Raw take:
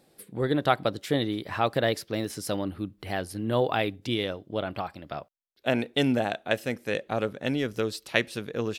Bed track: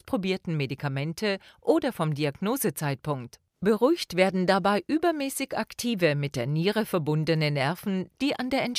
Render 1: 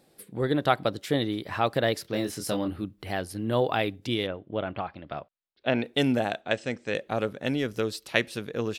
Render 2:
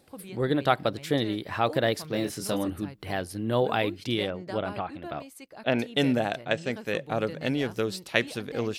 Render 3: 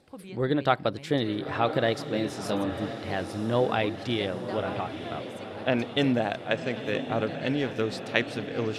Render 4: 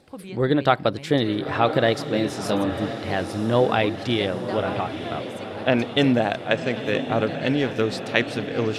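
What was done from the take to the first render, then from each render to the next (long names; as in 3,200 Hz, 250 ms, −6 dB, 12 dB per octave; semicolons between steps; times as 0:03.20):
0:02.02–0:02.84: double-tracking delay 24 ms −5.5 dB; 0:04.26–0:05.83: low-pass filter 2,800 Hz → 5,000 Hz 24 dB per octave; 0:06.41–0:06.95: elliptic low-pass filter 8,100 Hz
mix in bed track −16.5 dB
high-frequency loss of the air 58 metres; on a send: feedback delay with all-pass diffusion 987 ms, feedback 56%, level −10 dB
level +5.5 dB; brickwall limiter −3 dBFS, peak gain reduction 2 dB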